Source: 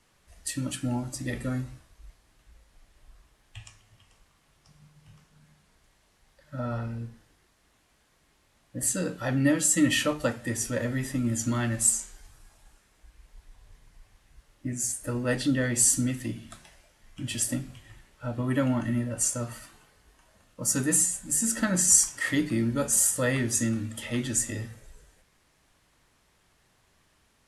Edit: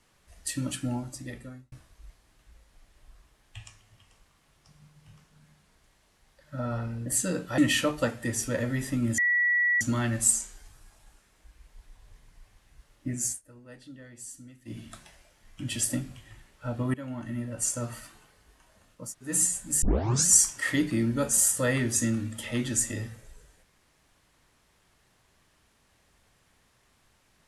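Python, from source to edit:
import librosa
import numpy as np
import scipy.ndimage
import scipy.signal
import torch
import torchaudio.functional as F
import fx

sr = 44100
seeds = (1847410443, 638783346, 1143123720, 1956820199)

y = fx.edit(x, sr, fx.fade_out_span(start_s=0.73, length_s=0.99),
    fx.cut(start_s=7.06, length_s=1.71),
    fx.cut(start_s=9.29, length_s=0.51),
    fx.insert_tone(at_s=11.4, length_s=0.63, hz=1940.0, db=-21.0),
    fx.fade_down_up(start_s=14.87, length_s=1.51, db=-21.5, fade_s=0.14),
    fx.fade_in_from(start_s=18.53, length_s=0.98, floor_db=-18.0),
    fx.room_tone_fill(start_s=20.62, length_s=0.29, crossfade_s=0.24),
    fx.tape_start(start_s=21.41, length_s=0.45), tone=tone)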